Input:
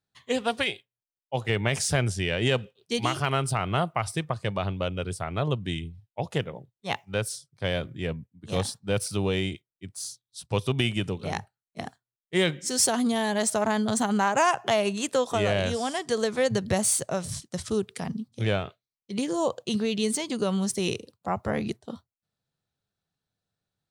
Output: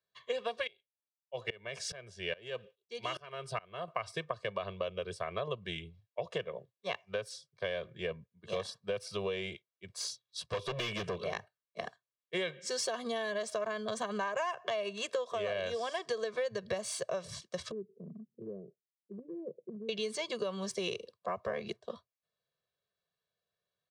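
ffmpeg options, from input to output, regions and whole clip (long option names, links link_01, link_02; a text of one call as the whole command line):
ffmpeg -i in.wav -filter_complex "[0:a]asettb=1/sr,asplit=3[link_01][link_02][link_03];[link_01]atrim=end=0.674[link_04];[link_02]atrim=start=0.67:end=3.88,asetpts=PTS-STARTPTS,afade=type=in:duration=0.004:curve=qsin,afade=type=out:start_time=3.206:duration=0.004:curve=qsin,bandreject=frequency=1100:width=15,aeval=exprs='val(0)*pow(10,-25*if(lt(mod(-2.4*n/s,1),2*abs(-2.4)/1000),1-mod(-2.4*n/s,1)/(2*abs(-2.4)/1000),(mod(-2.4*n/s,1)-2*abs(-2.4)/1000)/(1-2*abs(-2.4)/1000))/20)':channel_layout=same[link_05];[link_03]atrim=start=3.876[link_06];[link_04][link_05]acrossfade=duration=0.004:curve1=hsin:curve2=qsin[link_07];[link_07][link_06]acrossfade=duration=0.004:curve1=qsin:curve2=hsin,asettb=1/sr,asplit=3[link_08][link_09][link_10];[link_08]atrim=end=9.894[link_11];[link_09]atrim=start=9.89:end=11.24,asetpts=PTS-STARTPTS,afade=type=in:duration=0.004:curve=qsin,afade=type=out:start_time=1.346:duration=0.004:curve=qsin,acontrast=63,volume=24dB,asoftclip=hard,volume=-24dB[link_12];[link_10]atrim=start=11.236[link_13];[link_11][link_12]acrossfade=duration=0.004:curve1=hsin:curve2=qsin[link_14];[link_14][link_13]acrossfade=duration=0.004:curve1=qsin:curve2=hsin,asettb=1/sr,asplit=3[link_15][link_16][link_17];[link_15]atrim=end=17.714[link_18];[link_16]atrim=start=17.71:end=19.89,asetpts=PTS-STARTPTS,afade=type=in:duration=0.004:curve=qsin,afade=type=out:start_time=2.176:duration=0.004:curve=qsin,asuperpass=centerf=240:order=8:qfactor=0.95,acompressor=threshold=-31dB:ratio=4:attack=3.2:release=140:knee=1:detection=peak[link_19];[link_17]atrim=start=19.886[link_20];[link_18][link_19]acrossfade=duration=0.004:curve1=hsin:curve2=qsin[link_21];[link_21][link_20]acrossfade=duration=0.004:curve1=qsin:curve2=hsin,acrossover=split=220 5700:gain=0.158 1 0.112[link_22][link_23][link_24];[link_22][link_23][link_24]amix=inputs=3:normalize=0,aecho=1:1:1.8:0.99,acompressor=threshold=-28dB:ratio=6,volume=-4dB" out.wav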